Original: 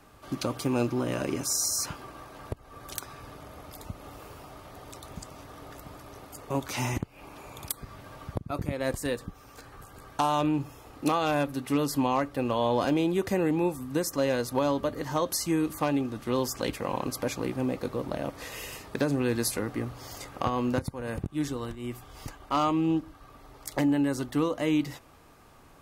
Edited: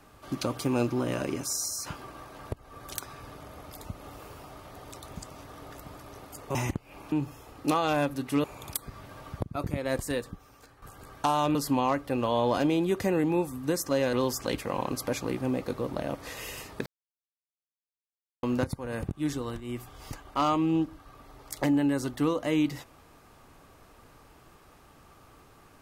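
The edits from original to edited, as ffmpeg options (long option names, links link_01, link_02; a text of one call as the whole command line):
ffmpeg -i in.wav -filter_complex "[0:a]asplit=10[link_01][link_02][link_03][link_04][link_05][link_06][link_07][link_08][link_09][link_10];[link_01]atrim=end=1.86,asetpts=PTS-STARTPTS,afade=type=out:start_time=1.11:duration=0.75:silence=0.446684[link_11];[link_02]atrim=start=1.86:end=6.552,asetpts=PTS-STARTPTS,afade=type=in:duration=0.004:curve=hsin:silence=0.446684[link_12];[link_03]atrim=start=6.818:end=7.392[link_13];[link_04]atrim=start=10.498:end=11.822[link_14];[link_05]atrim=start=7.388:end=9.77,asetpts=PTS-STARTPTS,afade=type=out:start_time=1.652:duration=0.73:silence=0.298538[link_15];[link_06]atrim=start=9.77:end=10.502,asetpts=PTS-STARTPTS,afade=type=in:duration=0.004:curve=hsin:silence=0.298538[link_16];[link_07]atrim=start=11.818:end=14.402[link_17];[link_08]atrim=start=16.278:end=19.01,asetpts=PTS-STARTPTS,afade=type=out:start_time=2.728:duration=0.004:curve=hsin[link_18];[link_09]atrim=start=19.01:end=20.58,asetpts=PTS-STARTPTS,volume=0[link_19];[link_10]atrim=start=20.58,asetpts=PTS-STARTPTS,afade=type=in:duration=0.004:curve=hsin[link_20];[link_11][link_12]concat=n=2:v=0:a=1[link_21];[link_21][link_13]acrossfade=duration=0.004:curve1=hsin:curve2=hsin[link_22];[link_22][link_14]acrossfade=duration=0.004:curve1=hsin:curve2=hsin[link_23];[link_15][link_16]concat=n=2:v=0:a=1[link_24];[link_23][link_24]acrossfade=duration=0.004:curve1=hsin:curve2=hsin[link_25];[link_25][link_17]acrossfade=duration=0.004:curve1=hsin:curve2=hsin[link_26];[link_18][link_19][link_20]concat=n=3:v=0:a=1[link_27];[link_26][link_27]acrossfade=duration=0.004:curve1=hsin:curve2=hsin" out.wav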